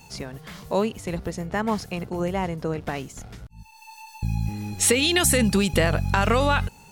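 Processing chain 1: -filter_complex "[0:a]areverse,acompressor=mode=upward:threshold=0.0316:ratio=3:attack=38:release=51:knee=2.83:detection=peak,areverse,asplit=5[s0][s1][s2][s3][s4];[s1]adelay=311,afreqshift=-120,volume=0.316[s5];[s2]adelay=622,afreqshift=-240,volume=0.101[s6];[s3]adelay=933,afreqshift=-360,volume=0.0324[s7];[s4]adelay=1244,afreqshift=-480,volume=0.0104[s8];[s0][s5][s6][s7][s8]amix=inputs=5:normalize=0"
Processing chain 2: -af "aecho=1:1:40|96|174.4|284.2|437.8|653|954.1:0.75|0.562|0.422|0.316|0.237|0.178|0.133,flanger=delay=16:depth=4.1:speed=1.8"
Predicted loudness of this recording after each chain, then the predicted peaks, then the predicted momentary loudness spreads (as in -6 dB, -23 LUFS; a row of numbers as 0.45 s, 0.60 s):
-23.5 LUFS, -23.0 LUFS; -6.0 dBFS, -7.0 dBFS; 14 LU, 20 LU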